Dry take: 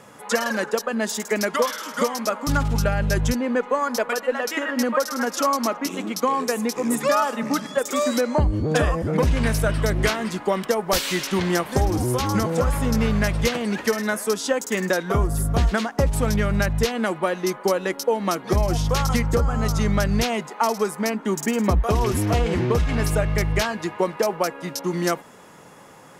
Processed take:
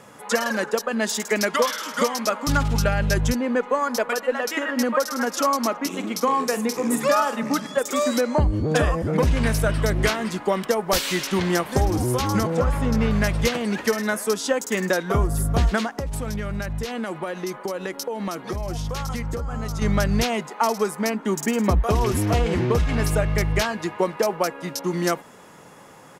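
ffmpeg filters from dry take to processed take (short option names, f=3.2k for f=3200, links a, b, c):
-filter_complex "[0:a]asettb=1/sr,asplit=3[a][b][c];[a]atrim=end=0.914[d];[b]atrim=start=0.91:end=3.14,asetpts=PTS-STARTPTS,afade=t=in:d=0.004:c=qsin,afade=t=out:st=2.226:d=0.004:c=qsin,equalizer=f=3.4k:w=0.56:g=3.5[e];[c]atrim=start=3.136[f];[d][e]acrossfade=d=0.004:c1=hsin:c2=qsin[g];[g][f]acrossfade=d=0.004:c1=qsin:c2=hsin,asplit=3[h][i][j];[h]afade=t=out:st=6.02:d=0.02[k];[i]asplit=2[l][m];[m]adelay=45,volume=-11dB[n];[l][n]amix=inputs=2:normalize=0,afade=t=in:st=6.02:d=0.02,afade=t=out:st=7.4:d=0.02[o];[j]afade=t=in:st=7.4:d=0.02[p];[k][o][p]amix=inputs=3:normalize=0,asettb=1/sr,asplit=3[q][r][s];[q]atrim=end=12.474[t];[r]atrim=start=12.47:end=13.11,asetpts=PTS-STARTPTS,afade=t=in:d=0.004:c=qsin,afade=t=out:st=0.636:d=0.004:c=qsin,highshelf=f=5.6k:g=-10.5[u];[s]atrim=start=13.106[v];[t][u]acrossfade=d=0.004:c1=hsin:c2=qsin[w];[w][v]acrossfade=d=0.004:c1=qsin:c2=hsin,asettb=1/sr,asplit=3[x][y][z];[x]atrim=end=15.914[aa];[y]atrim=start=15.91:end=19.82,asetpts=PTS-STARTPTS,afade=t=in:d=0.004:c=qsin,afade=t=out:st=3.906:d=0.004:c=qsin,acompressor=threshold=-24dB:ratio=6:attack=3.2:release=140:knee=1:detection=peak[ab];[z]atrim=start=19.816[ac];[aa][ab]acrossfade=d=0.004:c1=hsin:c2=qsin[ad];[ad][ac]acrossfade=d=0.004:c1=qsin:c2=hsin"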